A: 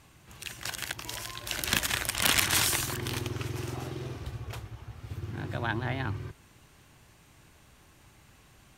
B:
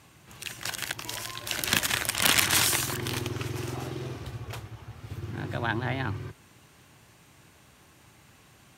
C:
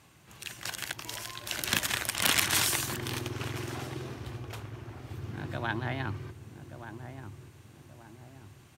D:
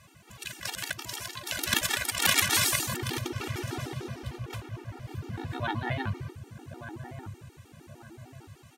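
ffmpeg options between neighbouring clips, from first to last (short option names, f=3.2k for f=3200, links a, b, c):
-af "highpass=89,volume=2.5dB"
-filter_complex "[0:a]asplit=2[a][b];[b]adelay=1180,lowpass=f=960:p=1,volume=-9dB,asplit=2[c][d];[d]adelay=1180,lowpass=f=960:p=1,volume=0.47,asplit=2[e][f];[f]adelay=1180,lowpass=f=960:p=1,volume=0.47,asplit=2[g][h];[h]adelay=1180,lowpass=f=960:p=1,volume=0.47,asplit=2[i][j];[j]adelay=1180,lowpass=f=960:p=1,volume=0.47[k];[a][c][e][g][i][k]amix=inputs=6:normalize=0,volume=-3.5dB"
-af "afftfilt=real='re*gt(sin(2*PI*6.6*pts/sr)*(1-2*mod(floor(b*sr/1024/240),2)),0)':imag='im*gt(sin(2*PI*6.6*pts/sr)*(1-2*mod(floor(b*sr/1024/240),2)),0)':win_size=1024:overlap=0.75,volume=5.5dB"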